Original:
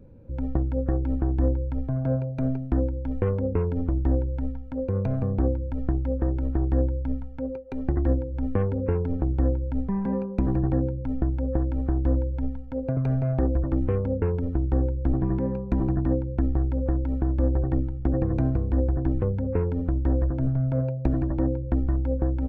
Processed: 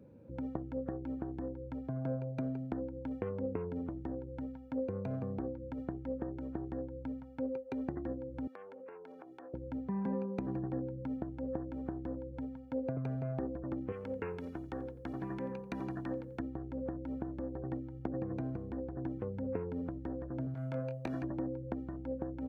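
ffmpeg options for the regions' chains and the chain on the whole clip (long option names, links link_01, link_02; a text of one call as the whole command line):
ffmpeg -i in.wav -filter_complex "[0:a]asettb=1/sr,asplit=3[link_01][link_02][link_03];[link_01]atrim=end=8.474[link_04];[link_02]atrim=start=8.47:end=9.54,asetpts=PTS-STARTPTS,afade=type=in:duration=0.004:curve=qsin,afade=type=out:start_time=1.066:duration=0.004:curve=qsin,highpass=670,acompressor=threshold=-44dB:ratio=5:attack=3.2:release=140:knee=1:detection=peak[link_05];[link_03]atrim=start=9.536[link_06];[link_04][link_05]acrossfade=duration=0.004:curve1=hsin:curve2=qsin[link_07];[link_07][link_06]acrossfade=duration=0.004:curve1=qsin:curve2=hsin,asettb=1/sr,asplit=3[link_08][link_09][link_10];[link_08]atrim=end=13.924[link_11];[link_09]atrim=start=13.92:end=16.4,asetpts=PTS-STARTPTS,afade=type=in:duration=0.004:curve=qsin,afade=type=out:start_time=2.476:duration=0.004:curve=qsin,tiltshelf=frequency=1200:gain=-9.5,asplit=4[link_12][link_13][link_14][link_15];[link_13]adelay=87,afreqshift=-38,volume=-19dB[link_16];[link_14]adelay=174,afreqshift=-76,volume=-27.9dB[link_17];[link_15]adelay=261,afreqshift=-114,volume=-36.7dB[link_18];[link_12][link_16][link_17][link_18]amix=inputs=4:normalize=0,atrim=end_sample=109368[link_19];[link_10]atrim=start=16.396[link_20];[link_11][link_19]acrossfade=duration=0.004:curve1=hsin:curve2=qsin[link_21];[link_21][link_20]acrossfade=duration=0.004:curve1=qsin:curve2=hsin,asettb=1/sr,asplit=3[link_22][link_23][link_24];[link_22]atrim=end=20.544[link_25];[link_23]atrim=start=20.54:end=21.24,asetpts=PTS-STARTPTS,afade=type=in:duration=0.004:curve=qsin,afade=type=out:start_time=0.696:duration=0.004:curve=qsin,tiltshelf=frequency=1100:gain=-8.5,asplit=2[link_26][link_27];[link_27]adelay=23,volume=-8dB[link_28];[link_26][link_28]amix=inputs=2:normalize=0,atrim=end_sample=30870[link_29];[link_24]atrim=start=21.236[link_30];[link_25][link_29]acrossfade=duration=0.004:curve1=hsin:curve2=qsin[link_31];[link_31][link_30]acrossfade=duration=0.004:curve1=qsin:curve2=hsin,acompressor=threshold=-27dB:ratio=6,highpass=150,volume=-3.5dB" out.wav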